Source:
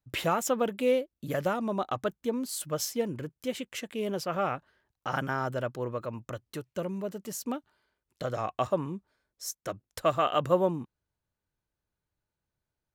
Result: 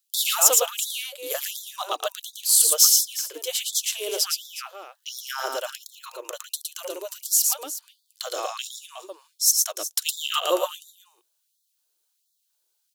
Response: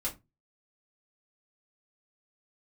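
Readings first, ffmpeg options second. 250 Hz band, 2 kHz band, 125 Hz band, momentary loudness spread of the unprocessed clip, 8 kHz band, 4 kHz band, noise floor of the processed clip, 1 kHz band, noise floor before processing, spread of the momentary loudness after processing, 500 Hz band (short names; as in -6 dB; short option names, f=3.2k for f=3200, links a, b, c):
-12.5 dB, +2.5 dB, under -40 dB, 12 LU, +20.5 dB, +16.0 dB, -74 dBFS, -0.5 dB, under -85 dBFS, 21 LU, -2.0 dB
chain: -af "aexciter=amount=5.6:drive=4.9:freq=2.9k,aecho=1:1:113|365:0.708|0.211,afftfilt=real='re*gte(b*sr/1024,290*pow(3400/290,0.5+0.5*sin(2*PI*1.4*pts/sr)))':imag='im*gte(b*sr/1024,290*pow(3400/290,0.5+0.5*sin(2*PI*1.4*pts/sr)))':win_size=1024:overlap=0.75,volume=1.5dB"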